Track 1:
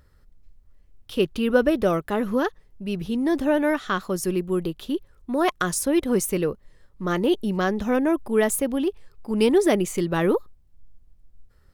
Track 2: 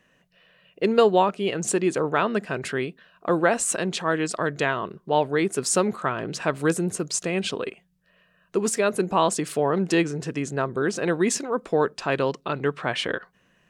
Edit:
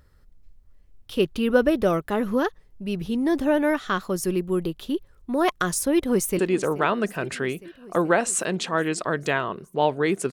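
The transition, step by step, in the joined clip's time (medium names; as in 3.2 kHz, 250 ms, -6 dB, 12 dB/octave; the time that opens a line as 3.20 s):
track 1
5.93–6.39 s: echo throw 430 ms, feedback 80%, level -17.5 dB
6.39 s: go over to track 2 from 1.72 s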